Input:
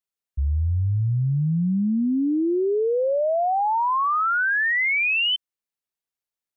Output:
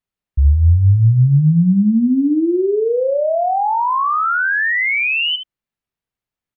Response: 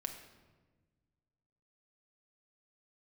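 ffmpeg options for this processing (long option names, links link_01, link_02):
-filter_complex "[0:a]bass=frequency=250:gain=10,treble=frequency=4000:gain=-10,asplit=2[link_01][link_02];[link_02]alimiter=limit=-20.5dB:level=0:latency=1:release=15,volume=2.5dB[link_03];[link_01][link_03]amix=inputs=2:normalize=0,aecho=1:1:72:0.335,volume=-2dB"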